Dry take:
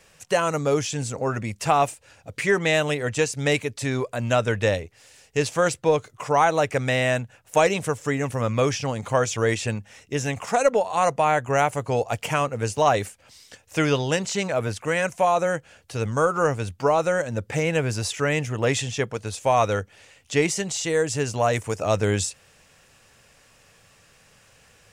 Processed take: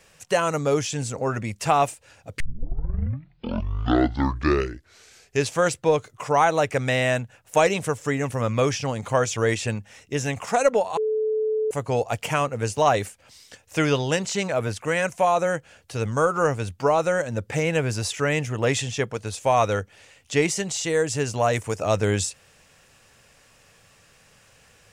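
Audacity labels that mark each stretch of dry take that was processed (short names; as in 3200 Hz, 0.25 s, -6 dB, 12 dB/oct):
2.400000	2.400000	tape start 3.12 s
10.970000	11.710000	bleep 434 Hz -20.5 dBFS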